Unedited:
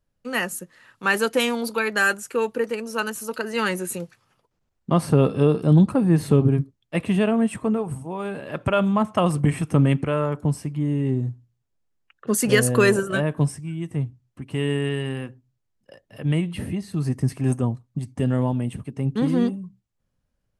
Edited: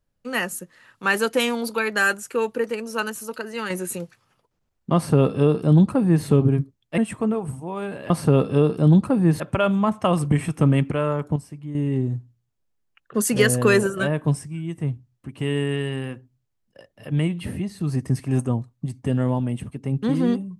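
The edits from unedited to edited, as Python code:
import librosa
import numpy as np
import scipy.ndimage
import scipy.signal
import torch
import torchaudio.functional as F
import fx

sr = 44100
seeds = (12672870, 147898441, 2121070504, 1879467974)

y = fx.edit(x, sr, fx.fade_out_to(start_s=3.01, length_s=0.69, floor_db=-7.0),
    fx.duplicate(start_s=4.95, length_s=1.3, to_s=8.53),
    fx.cut(start_s=6.98, length_s=0.43),
    fx.clip_gain(start_s=10.49, length_s=0.39, db=-8.5), tone=tone)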